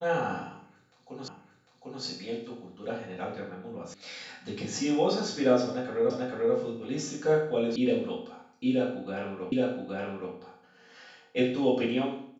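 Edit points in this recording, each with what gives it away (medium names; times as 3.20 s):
1.28 s: repeat of the last 0.75 s
3.94 s: sound stops dead
6.10 s: repeat of the last 0.44 s
7.76 s: sound stops dead
9.52 s: repeat of the last 0.82 s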